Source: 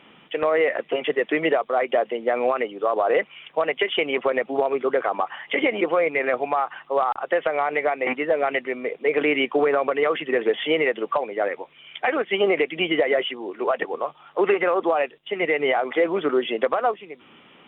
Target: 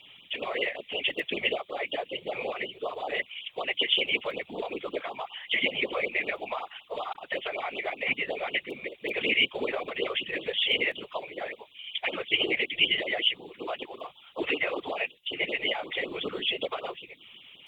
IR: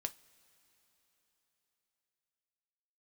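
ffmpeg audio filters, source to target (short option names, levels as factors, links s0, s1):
-af "aexciter=amount=10:drive=1.4:freq=2300,afftfilt=real='hypot(re,im)*cos(2*PI*random(0))':imag='hypot(re,im)*sin(2*PI*random(1))':win_size=512:overlap=0.75,afftfilt=real='re*(1-between(b*sr/1024,220*pow(2000/220,0.5+0.5*sin(2*PI*5.3*pts/sr))/1.41,220*pow(2000/220,0.5+0.5*sin(2*PI*5.3*pts/sr))*1.41))':imag='im*(1-between(b*sr/1024,220*pow(2000/220,0.5+0.5*sin(2*PI*5.3*pts/sr))/1.41,220*pow(2000/220,0.5+0.5*sin(2*PI*5.3*pts/sr))*1.41))':win_size=1024:overlap=0.75,volume=0.562"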